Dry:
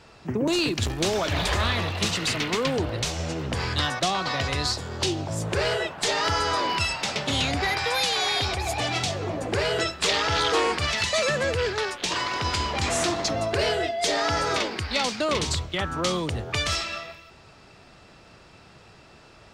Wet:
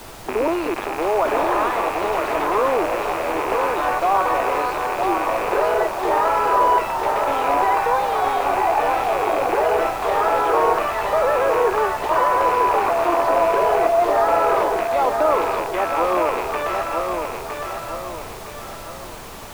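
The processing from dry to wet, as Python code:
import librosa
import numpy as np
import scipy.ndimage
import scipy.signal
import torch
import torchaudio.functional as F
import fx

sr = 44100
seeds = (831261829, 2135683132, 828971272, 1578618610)

p1 = fx.rattle_buzz(x, sr, strikes_db=-34.0, level_db=-15.0)
p2 = scipy.signal.sosfilt(scipy.signal.butter(4, 360.0, 'highpass', fs=sr, output='sos'), p1)
p3 = fx.over_compress(p2, sr, threshold_db=-27.0, ratio=-1.0)
p4 = p2 + (p3 * librosa.db_to_amplitude(2.0))
p5 = fx.lowpass_res(p4, sr, hz=1000.0, q=1.8)
p6 = fx.dmg_noise_colour(p5, sr, seeds[0], colour='pink', level_db=-39.0)
y = p6 + fx.echo_feedback(p6, sr, ms=962, feedback_pct=42, wet_db=-5, dry=0)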